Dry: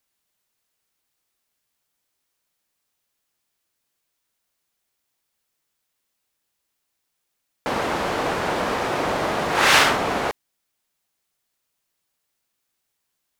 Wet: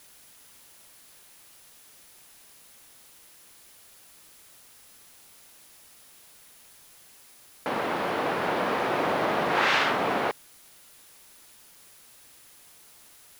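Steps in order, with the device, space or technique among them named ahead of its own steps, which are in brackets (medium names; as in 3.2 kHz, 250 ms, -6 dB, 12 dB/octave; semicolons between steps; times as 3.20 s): medium wave at night (band-pass 140–3800 Hz; compression, threshold -18 dBFS, peak gain reduction 6.5 dB; tremolo 0.21 Hz, depth 31%; whistle 10 kHz -58 dBFS; white noise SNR 21 dB); trim -1.5 dB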